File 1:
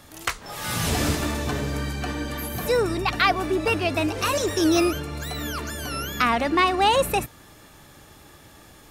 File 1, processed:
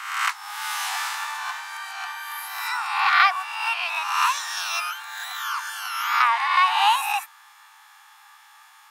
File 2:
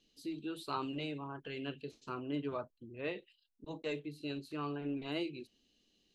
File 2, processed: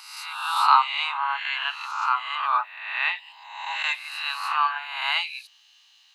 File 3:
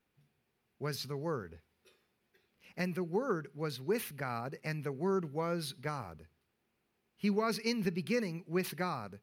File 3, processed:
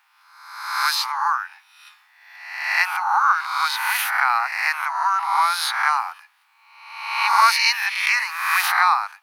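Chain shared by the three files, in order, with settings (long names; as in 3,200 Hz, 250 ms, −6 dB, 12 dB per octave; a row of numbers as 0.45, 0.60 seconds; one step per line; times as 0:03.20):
peak hold with a rise ahead of every peak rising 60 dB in 0.99 s
Butterworth high-pass 830 Hz 72 dB per octave
high-shelf EQ 2,600 Hz −10 dB
normalise the peak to −3 dBFS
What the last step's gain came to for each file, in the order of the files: +3.0, +22.5, +22.5 decibels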